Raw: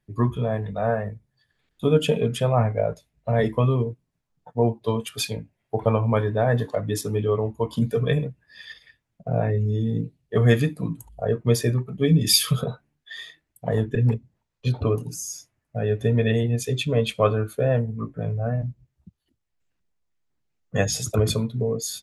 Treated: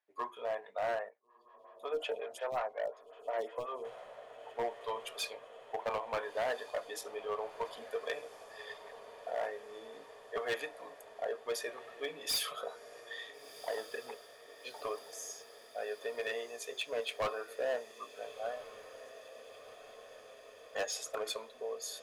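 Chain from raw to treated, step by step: HPF 580 Hz 24 dB/oct; high shelf 3400 Hz -9.5 dB; hard clip -25 dBFS, distortion -9 dB; diffused feedback echo 1.416 s, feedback 71%, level -15 dB; 1.09–3.85 photocell phaser 5.5 Hz; gain -4.5 dB

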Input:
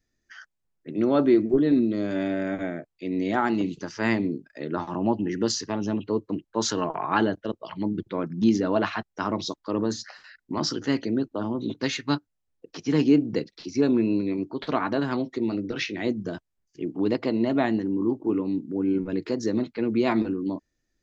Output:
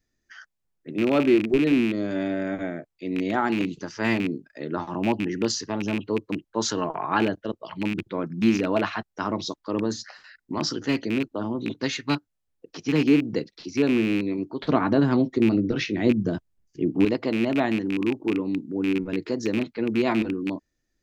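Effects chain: rattling part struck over -26 dBFS, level -20 dBFS; 14.65–17.05 low shelf 400 Hz +10 dB

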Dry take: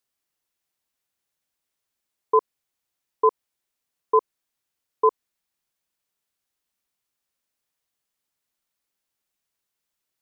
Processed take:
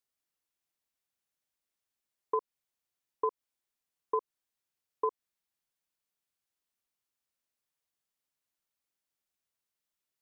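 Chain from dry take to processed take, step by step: compressor 5:1, threshold -20 dBFS, peak gain reduction 7 dB; gain -7 dB

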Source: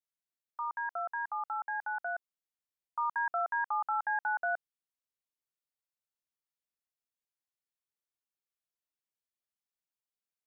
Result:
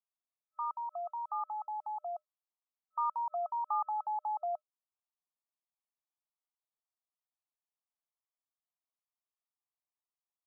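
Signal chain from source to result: FFT band-pass 610–1300 Hz

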